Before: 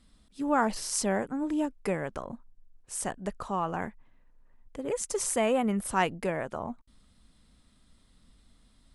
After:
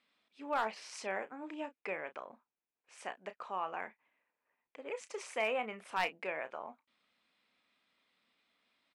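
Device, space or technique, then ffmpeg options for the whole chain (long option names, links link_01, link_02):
megaphone: -filter_complex "[0:a]asettb=1/sr,asplit=3[link_01][link_02][link_03];[link_01]atrim=end=1.814[link_04];[link_02]atrim=start=1.81:end=2.98,asetpts=PTS-STARTPTS,afade=type=in:duration=0.004:curve=qsin,afade=type=out:start_time=1.166:duration=0.004:curve=qsin,highshelf=frequency=9700:gain=-10.5[link_05];[link_03]atrim=start=2.976[link_06];[link_04][link_05]acrossfade=duration=0.004:curve1=hsin:curve2=qsin[link_07];[link_07][link_06]acrossfade=duration=0.004:curve1=qsin:curve2=hsin,highpass=510,lowpass=3700,equalizer=frequency=2400:width_type=o:width=0.48:gain=10,asoftclip=type=hard:threshold=-18dB,asplit=2[link_08][link_09];[link_09]adelay=32,volume=-12dB[link_10];[link_08][link_10]amix=inputs=2:normalize=0,volume=-6.5dB"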